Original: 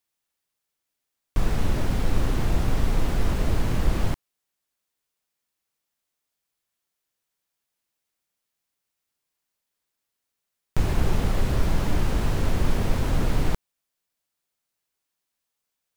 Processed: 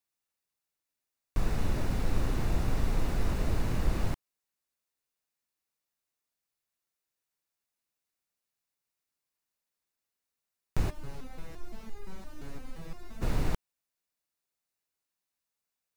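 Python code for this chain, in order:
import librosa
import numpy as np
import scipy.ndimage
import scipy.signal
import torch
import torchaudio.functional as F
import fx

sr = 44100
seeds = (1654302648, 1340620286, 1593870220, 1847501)

y = fx.notch(x, sr, hz=3200.0, q=13.0)
y = fx.resonator_held(y, sr, hz=5.8, low_hz=140.0, high_hz=410.0, at=(10.89, 13.21), fade=0.02)
y = y * 10.0 ** (-6.0 / 20.0)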